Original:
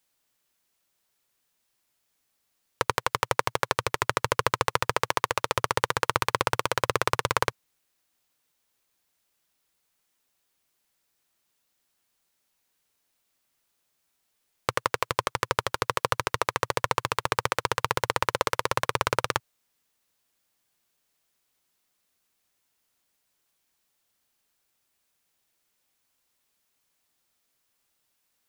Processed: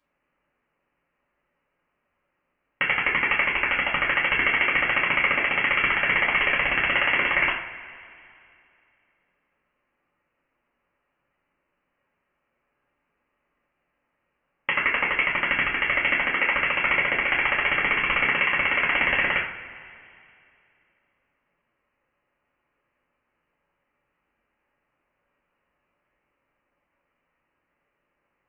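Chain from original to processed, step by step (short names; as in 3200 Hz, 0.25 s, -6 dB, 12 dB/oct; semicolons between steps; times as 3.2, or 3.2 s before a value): HPF 1100 Hz 6 dB/oct; overloaded stage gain 11.5 dB; inverted band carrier 3200 Hz; two-slope reverb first 0.45 s, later 2.6 s, from -18 dB, DRR -7 dB; gain +2 dB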